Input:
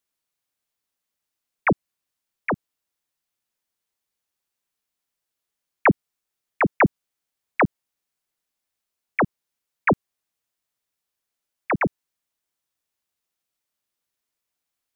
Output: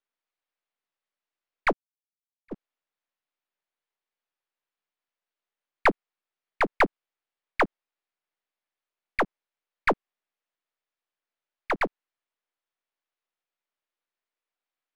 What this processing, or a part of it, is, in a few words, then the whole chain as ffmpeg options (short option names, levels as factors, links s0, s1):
crystal radio: -filter_complex "[0:a]highpass=360,lowpass=2900,aeval=exprs='if(lt(val(0),0),0.447*val(0),val(0))':c=same,asplit=3[s0][s1][s2];[s0]afade=t=out:st=1.71:d=0.02[s3];[s1]agate=range=0.02:threshold=0.1:ratio=16:detection=peak,afade=t=in:st=1.71:d=0.02,afade=t=out:st=2.51:d=0.02[s4];[s2]afade=t=in:st=2.51:d=0.02[s5];[s3][s4][s5]amix=inputs=3:normalize=0"